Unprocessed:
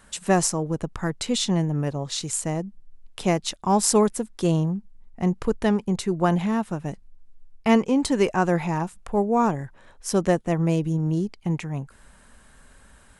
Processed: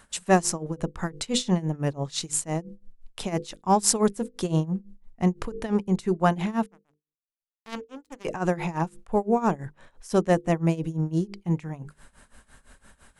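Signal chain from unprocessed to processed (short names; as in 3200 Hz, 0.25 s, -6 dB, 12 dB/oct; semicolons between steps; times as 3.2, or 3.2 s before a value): 6.66–8.25 power-law curve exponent 3; notches 50/100/150/200/250/300/350/400/450/500 Hz; tremolo 5.9 Hz, depth 88%; gain +2 dB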